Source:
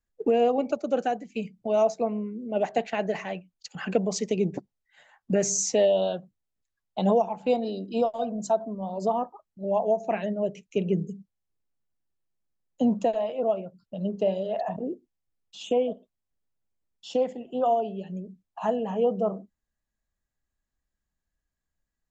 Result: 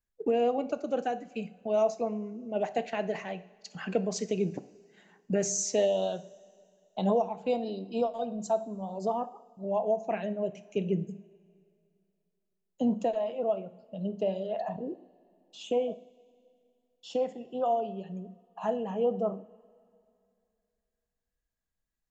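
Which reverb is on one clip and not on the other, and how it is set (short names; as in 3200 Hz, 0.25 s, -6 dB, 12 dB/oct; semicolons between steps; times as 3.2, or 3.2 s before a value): two-slope reverb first 0.5 s, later 2.5 s, from -16 dB, DRR 12 dB; gain -4.5 dB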